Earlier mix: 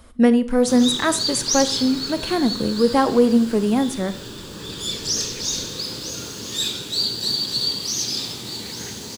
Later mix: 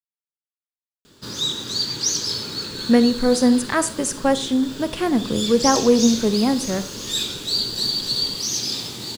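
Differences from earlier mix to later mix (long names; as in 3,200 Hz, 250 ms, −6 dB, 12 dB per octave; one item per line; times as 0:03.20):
speech: entry +2.70 s
background: entry +0.55 s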